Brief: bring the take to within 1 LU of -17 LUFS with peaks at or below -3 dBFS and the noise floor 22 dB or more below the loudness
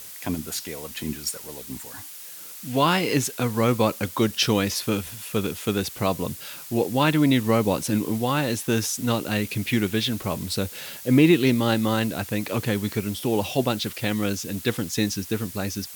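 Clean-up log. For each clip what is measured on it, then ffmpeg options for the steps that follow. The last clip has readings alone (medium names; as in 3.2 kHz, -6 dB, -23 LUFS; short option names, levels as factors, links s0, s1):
noise floor -40 dBFS; noise floor target -46 dBFS; loudness -24.0 LUFS; peak level -6.5 dBFS; loudness target -17.0 LUFS
-> -af "afftdn=nr=6:nf=-40"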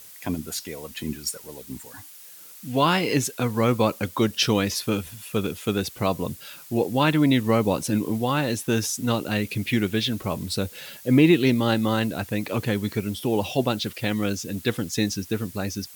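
noise floor -45 dBFS; noise floor target -47 dBFS
-> -af "afftdn=nr=6:nf=-45"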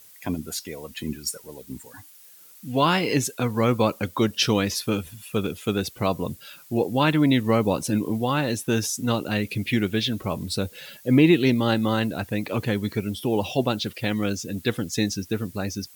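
noise floor -49 dBFS; loudness -24.5 LUFS; peak level -6.5 dBFS; loudness target -17.0 LUFS
-> -af "volume=2.37,alimiter=limit=0.708:level=0:latency=1"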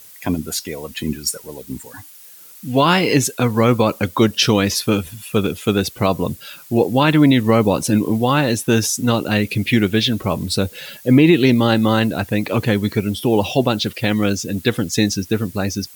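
loudness -17.5 LUFS; peak level -3.0 dBFS; noise floor -42 dBFS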